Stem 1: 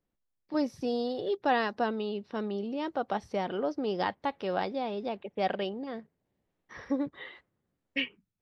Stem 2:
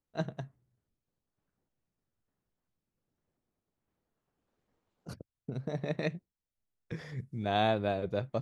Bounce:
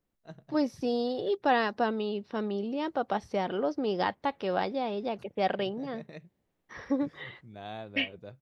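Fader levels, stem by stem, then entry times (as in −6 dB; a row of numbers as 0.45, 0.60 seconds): +1.5, −13.0 decibels; 0.00, 0.10 seconds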